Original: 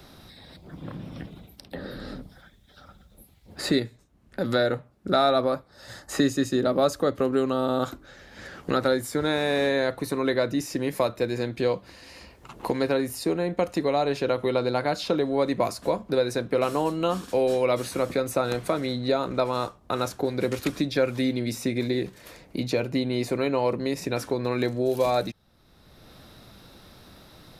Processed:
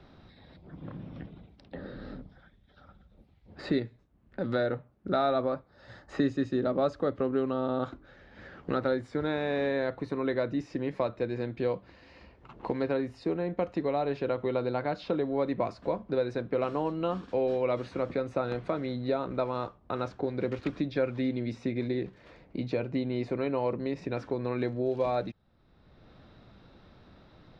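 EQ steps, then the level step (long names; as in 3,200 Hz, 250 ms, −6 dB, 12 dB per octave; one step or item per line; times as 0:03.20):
head-to-tape spacing loss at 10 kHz 45 dB
high-shelf EQ 2,200 Hz +10.5 dB
−3.5 dB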